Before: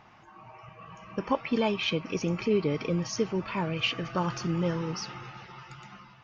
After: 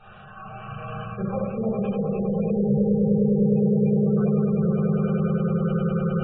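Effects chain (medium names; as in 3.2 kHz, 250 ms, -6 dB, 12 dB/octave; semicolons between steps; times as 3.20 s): backward echo that repeats 442 ms, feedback 54%, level -12 dB; low-pass that closes with the level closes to 590 Hz, closed at -23 dBFS; echo with a slow build-up 102 ms, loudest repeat 8, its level -4 dB; dynamic bell 120 Hz, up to +7 dB, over -40 dBFS, Q 1.3; reverse; compression 6:1, threshold -33 dBFS, peak gain reduction 17 dB; reverse; static phaser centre 1.4 kHz, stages 8; small resonant body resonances 200/1500/2400 Hz, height 9 dB, ringing for 80 ms; reverberation RT60 0.80 s, pre-delay 5 ms, DRR -10.5 dB; spectral gate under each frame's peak -25 dB strong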